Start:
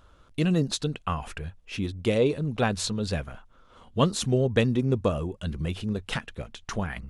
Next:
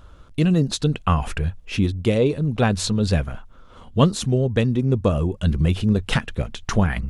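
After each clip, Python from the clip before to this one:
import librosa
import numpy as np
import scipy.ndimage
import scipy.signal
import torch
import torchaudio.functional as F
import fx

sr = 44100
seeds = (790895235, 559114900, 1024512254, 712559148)

y = fx.low_shelf(x, sr, hz=250.0, db=6.5)
y = fx.rider(y, sr, range_db=4, speed_s=0.5)
y = y * librosa.db_to_amplitude(3.5)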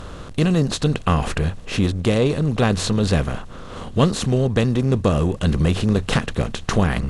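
y = fx.bin_compress(x, sr, power=0.6)
y = y * librosa.db_to_amplitude(-2.0)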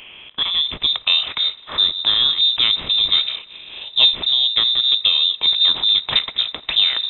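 y = fx.echo_wet_highpass(x, sr, ms=86, feedback_pct=74, hz=1700.0, wet_db=-23.0)
y = fx.filter_sweep_highpass(y, sr, from_hz=710.0, to_hz=160.0, start_s=0.11, end_s=1.02, q=1.9)
y = fx.freq_invert(y, sr, carrier_hz=3800)
y = y * librosa.db_to_amplitude(-1.0)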